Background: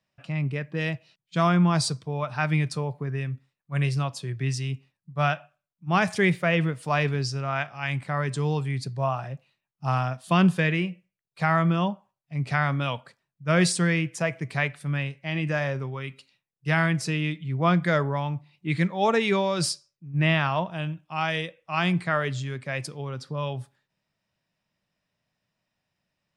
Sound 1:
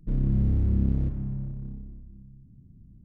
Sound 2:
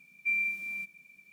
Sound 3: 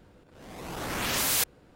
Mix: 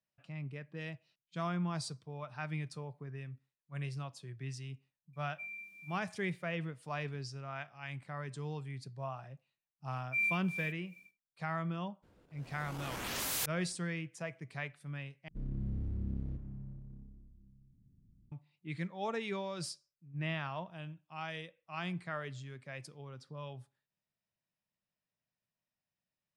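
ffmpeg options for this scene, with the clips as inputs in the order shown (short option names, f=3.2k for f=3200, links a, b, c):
-filter_complex "[2:a]asplit=2[a][b];[0:a]volume=-15dB[c];[a]bandreject=f=2k:w=19[d];[b]tremolo=f=2.7:d=0.88[e];[c]asplit=2[f][g];[f]atrim=end=15.284[h];[1:a]atrim=end=3.04,asetpts=PTS-STARTPTS,volume=-14dB[i];[g]atrim=start=18.316[j];[d]atrim=end=1.32,asetpts=PTS-STARTPTS,volume=-16dB,afade=t=in:d=0.004:c=hsin,afade=t=out:st=1.316:d=0.004:c=hsin,adelay=226233S[k];[e]atrim=end=1.32,asetpts=PTS-STARTPTS,volume=-1.5dB,afade=t=in:d=0.1,afade=t=out:st=1.22:d=0.1,adelay=9870[l];[3:a]atrim=end=1.75,asetpts=PTS-STARTPTS,volume=-9.5dB,afade=t=in:d=0.02,afade=t=out:st=1.73:d=0.02,adelay=12020[m];[h][i]acrossfade=d=0.004:c1=hsin:c2=hsin[n];[n][j]acrossfade=d=0.004:c1=hsin:c2=hsin[o];[o][k][l][m]amix=inputs=4:normalize=0"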